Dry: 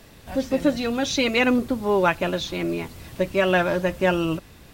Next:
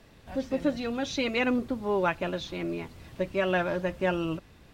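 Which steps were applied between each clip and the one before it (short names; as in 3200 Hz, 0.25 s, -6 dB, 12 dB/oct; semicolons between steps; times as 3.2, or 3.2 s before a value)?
high shelf 7200 Hz -11.5 dB; gain -6.5 dB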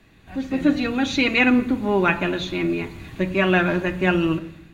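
AGC gain up to 7.5 dB; reverb RT60 0.70 s, pre-delay 3 ms, DRR 7.5 dB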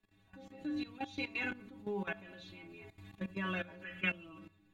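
metallic resonator 97 Hz, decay 0.35 s, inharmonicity 0.008; level quantiser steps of 16 dB; spectral gain 3.83–4.09, 1200–3500 Hz +12 dB; gain -4.5 dB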